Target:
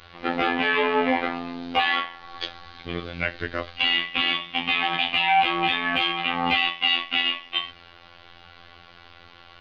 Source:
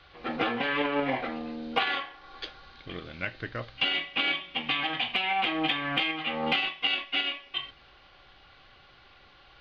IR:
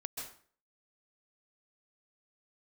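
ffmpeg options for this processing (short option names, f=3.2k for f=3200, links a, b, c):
-af "afftfilt=real='hypot(re,im)*cos(PI*b)':imag='0':win_size=2048:overlap=0.75,apsyclip=17.5dB,volume=-7dB"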